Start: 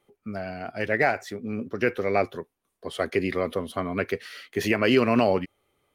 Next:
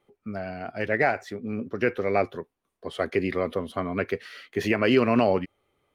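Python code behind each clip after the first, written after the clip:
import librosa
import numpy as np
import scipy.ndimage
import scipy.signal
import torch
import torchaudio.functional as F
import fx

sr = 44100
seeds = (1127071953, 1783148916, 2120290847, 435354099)

y = fx.high_shelf(x, sr, hz=5200.0, db=-9.0)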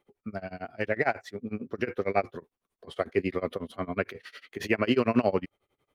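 y = x * (1.0 - 0.95 / 2.0 + 0.95 / 2.0 * np.cos(2.0 * np.pi * 11.0 * (np.arange(len(x)) / sr)))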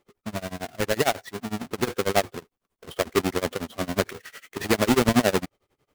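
y = fx.halfwave_hold(x, sr)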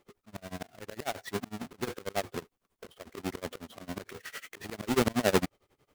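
y = fx.auto_swell(x, sr, attack_ms=368.0)
y = y * librosa.db_to_amplitude(1.5)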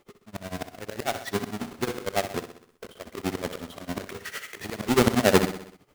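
y = fx.echo_feedback(x, sr, ms=63, feedback_pct=55, wet_db=-11.0)
y = y * librosa.db_to_amplitude(6.0)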